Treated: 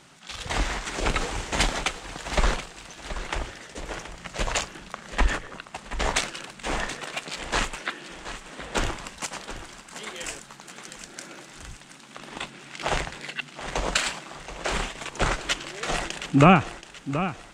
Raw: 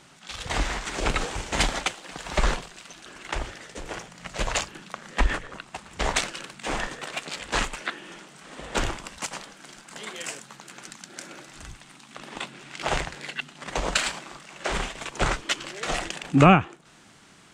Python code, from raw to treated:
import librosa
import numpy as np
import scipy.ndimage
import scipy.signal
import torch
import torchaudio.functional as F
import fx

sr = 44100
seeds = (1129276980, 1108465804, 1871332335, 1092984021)

y = fx.echo_feedback(x, sr, ms=727, feedback_pct=40, wet_db=-12.0)